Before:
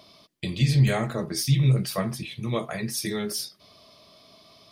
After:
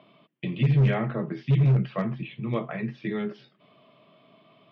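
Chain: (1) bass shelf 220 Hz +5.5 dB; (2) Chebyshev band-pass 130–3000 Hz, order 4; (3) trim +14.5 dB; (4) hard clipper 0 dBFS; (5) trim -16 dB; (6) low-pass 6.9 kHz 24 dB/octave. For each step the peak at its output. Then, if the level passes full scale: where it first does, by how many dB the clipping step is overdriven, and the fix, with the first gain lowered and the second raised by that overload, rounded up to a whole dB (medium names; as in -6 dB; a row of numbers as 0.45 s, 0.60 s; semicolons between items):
-6.5 dBFS, -7.5 dBFS, +7.0 dBFS, 0.0 dBFS, -16.0 dBFS, -16.0 dBFS; step 3, 7.0 dB; step 3 +7.5 dB, step 5 -9 dB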